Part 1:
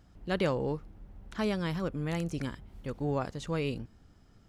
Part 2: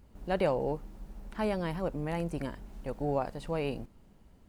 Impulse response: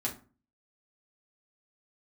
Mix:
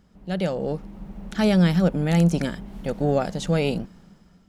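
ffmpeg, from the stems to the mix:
-filter_complex "[0:a]highpass=950,volume=1.5dB[link_01];[1:a]lowpass=frequency=1300:poles=1,lowshelf=frequency=190:gain=-6.5,volume=1dB[link_02];[link_01][link_02]amix=inputs=2:normalize=0,equalizer=frequency=180:width_type=o:width=0.4:gain=14,dynaudnorm=framelen=200:gausssize=7:maxgain=10.5dB"

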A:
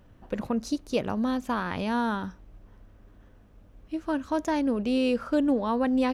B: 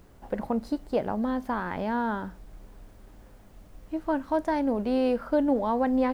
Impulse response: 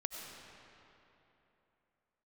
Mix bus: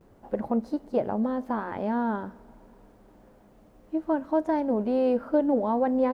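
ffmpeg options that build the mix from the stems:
-filter_complex "[0:a]volume=-16dB[link_01];[1:a]highpass=frequency=620:poles=1,adelay=10,volume=0dB,asplit=2[link_02][link_03];[link_03]volume=-20.5dB[link_04];[2:a]atrim=start_sample=2205[link_05];[link_04][link_05]afir=irnorm=-1:irlink=0[link_06];[link_01][link_02][link_06]amix=inputs=3:normalize=0,tiltshelf=frequency=940:gain=9.5"

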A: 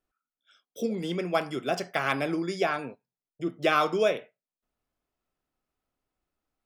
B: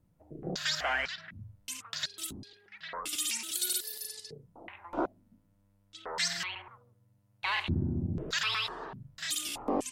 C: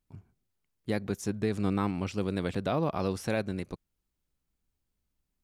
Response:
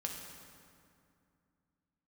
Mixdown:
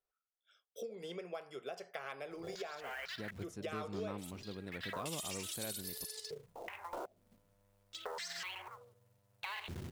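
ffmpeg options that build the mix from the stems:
-filter_complex "[0:a]volume=-9dB,asplit=2[link_01][link_02];[1:a]alimiter=level_in=2.5dB:limit=-24dB:level=0:latency=1:release=70,volume=-2.5dB,acrusher=bits=4:mode=log:mix=0:aa=0.000001,adelay=2000,volume=2dB[link_03];[2:a]adelay=2300,volume=-15.5dB[link_04];[link_02]apad=whole_len=525470[link_05];[link_03][link_05]sidechaincompress=threshold=-44dB:ratio=8:attack=16:release=390[link_06];[link_01][link_06]amix=inputs=2:normalize=0,lowshelf=frequency=360:width_type=q:width=3:gain=-6,acompressor=threshold=-41dB:ratio=6,volume=0dB[link_07];[link_04][link_07]amix=inputs=2:normalize=0"

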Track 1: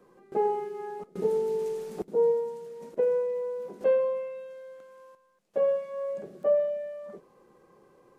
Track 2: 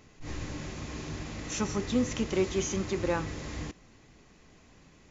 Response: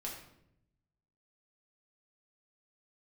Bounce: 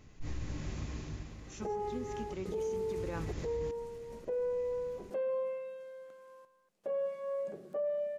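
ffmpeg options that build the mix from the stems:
-filter_complex "[0:a]bandreject=frequency=64.49:width_type=h:width=4,bandreject=frequency=128.98:width_type=h:width=4,bandreject=frequency=193.47:width_type=h:width=4,bandreject=frequency=257.96:width_type=h:width=4,bandreject=frequency=322.45:width_type=h:width=4,bandreject=frequency=386.94:width_type=h:width=4,adelay=1300,volume=-3.5dB[link_01];[1:a]lowshelf=frequency=150:gain=11,volume=6dB,afade=type=out:start_time=0.79:duration=0.58:silence=0.316228,afade=type=in:start_time=2.87:duration=0.3:silence=0.266073[link_02];[link_01][link_02]amix=inputs=2:normalize=0,alimiter=level_in=5dB:limit=-24dB:level=0:latency=1:release=131,volume=-5dB"

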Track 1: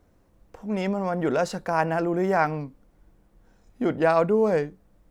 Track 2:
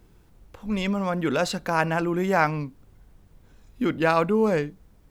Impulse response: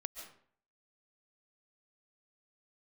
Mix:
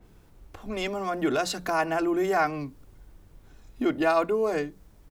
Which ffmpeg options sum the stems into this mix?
-filter_complex "[0:a]volume=-5dB[link_01];[1:a]bandreject=frequency=60:width_type=h:width=6,bandreject=frequency=120:width_type=h:width=6,bandreject=frequency=180:width_type=h:width=6,acompressor=threshold=-31dB:ratio=2,adynamicequalizer=threshold=0.00398:dfrequency=3900:dqfactor=0.7:tfrequency=3900:tqfactor=0.7:attack=5:release=100:ratio=0.375:range=2.5:mode=boostabove:tftype=highshelf,adelay=2.4,volume=1dB[link_02];[link_01][link_02]amix=inputs=2:normalize=0"

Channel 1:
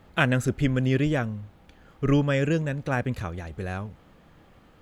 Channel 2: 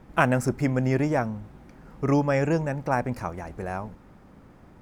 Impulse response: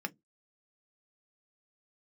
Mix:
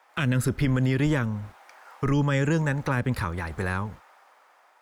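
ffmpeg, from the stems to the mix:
-filter_complex "[0:a]agate=range=-49dB:threshold=-44dB:ratio=16:detection=peak,volume=3dB[link_01];[1:a]dynaudnorm=framelen=290:gausssize=7:maxgain=7dB,highpass=frequency=720:width=0.5412,highpass=frequency=720:width=1.3066,acompressor=threshold=-31dB:ratio=3,volume=1.5dB[link_02];[link_01][link_02]amix=inputs=2:normalize=0,acrossover=split=290|3000[link_03][link_04][link_05];[link_04]acompressor=threshold=-24dB:ratio=6[link_06];[link_03][link_06][link_05]amix=inputs=3:normalize=0,alimiter=limit=-14.5dB:level=0:latency=1:release=30"

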